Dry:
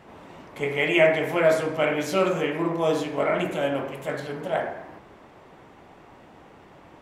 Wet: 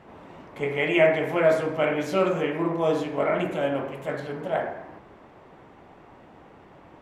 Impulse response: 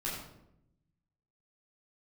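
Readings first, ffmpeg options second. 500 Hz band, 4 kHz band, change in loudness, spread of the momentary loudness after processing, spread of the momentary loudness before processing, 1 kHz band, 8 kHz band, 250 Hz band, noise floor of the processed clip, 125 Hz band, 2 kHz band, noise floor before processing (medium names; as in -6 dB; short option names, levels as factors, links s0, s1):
0.0 dB, -4.0 dB, -0.5 dB, 12 LU, 12 LU, -0.5 dB, no reading, 0.0 dB, -51 dBFS, 0.0 dB, -2.0 dB, -51 dBFS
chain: -af "highshelf=f=3500:g=-8.5"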